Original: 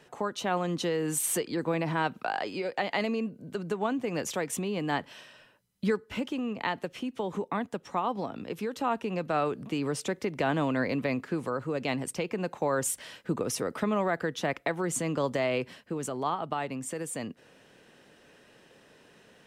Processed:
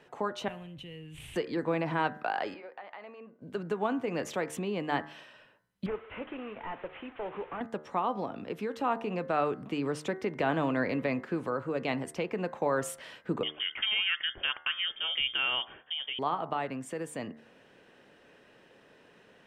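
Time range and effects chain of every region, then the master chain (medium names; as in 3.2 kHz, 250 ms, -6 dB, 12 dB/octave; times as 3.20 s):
0.48–1.36 s: CVSD coder 64 kbps + FFT filter 130 Hz 0 dB, 200 Hz -17 dB, 640 Hz -26 dB, 1.4 kHz -28 dB, 2.9 kHz -7 dB, 4.8 kHz -28 dB, 10 kHz -19 dB + level flattener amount 100%
2.54–3.42 s: band-pass filter 1.1 kHz, Q 1.1 + compression 3:1, threshold -44 dBFS
5.86–7.61 s: one-bit delta coder 16 kbps, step -42 dBFS + peaking EQ 200 Hz -11.5 dB 1.4 oct
13.43–16.19 s: de-esser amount 95% + frequency inversion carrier 3.4 kHz
whole clip: tone controls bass -3 dB, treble -10 dB; de-hum 75.72 Hz, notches 28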